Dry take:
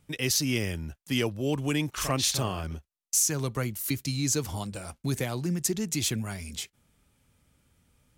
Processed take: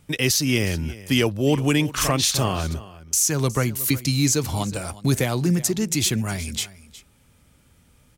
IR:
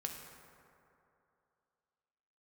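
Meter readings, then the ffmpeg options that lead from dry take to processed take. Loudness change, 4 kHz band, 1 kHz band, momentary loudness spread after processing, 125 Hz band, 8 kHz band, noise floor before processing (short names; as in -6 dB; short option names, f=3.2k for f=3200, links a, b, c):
+7.0 dB, +6.5 dB, +7.5 dB, 8 LU, +8.0 dB, +5.5 dB, -81 dBFS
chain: -filter_complex "[0:a]alimiter=limit=-18dB:level=0:latency=1:release=298,asplit=2[a][b];[b]aecho=0:1:364:0.126[c];[a][c]amix=inputs=2:normalize=0,volume=9dB"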